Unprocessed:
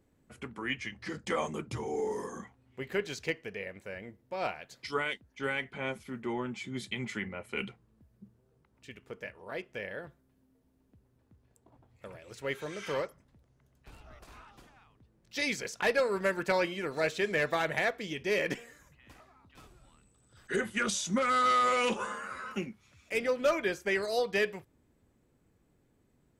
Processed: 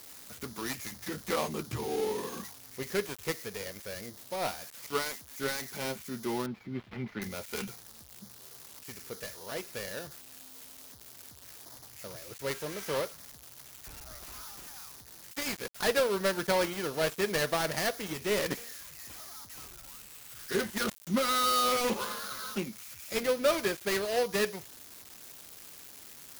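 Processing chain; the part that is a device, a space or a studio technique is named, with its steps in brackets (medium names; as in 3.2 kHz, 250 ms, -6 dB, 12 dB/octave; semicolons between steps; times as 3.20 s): budget class-D amplifier (dead-time distortion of 0.18 ms; zero-crossing glitches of -31 dBFS); 6.46–7.22 s: distance through air 360 m; trim +1.5 dB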